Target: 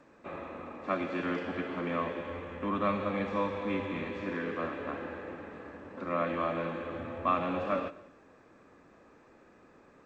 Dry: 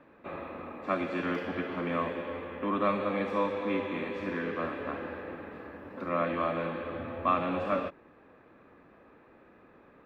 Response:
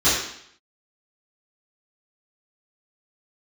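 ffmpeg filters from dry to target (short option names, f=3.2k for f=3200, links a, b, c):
-filter_complex "[0:a]asplit=3[a][b][c];[a]afade=t=out:st=2.19:d=0.02[d];[b]asubboost=boost=2.5:cutoff=190,afade=t=in:st=2.19:d=0.02,afade=t=out:st=4.2:d=0.02[e];[c]afade=t=in:st=4.2:d=0.02[f];[d][e][f]amix=inputs=3:normalize=0,asplit=2[g][h];[1:a]atrim=start_sample=2205,adelay=100[i];[h][i]afir=irnorm=-1:irlink=0,volume=-37.5dB[j];[g][j]amix=inputs=2:normalize=0,volume=-1.5dB" -ar 16000 -c:a g722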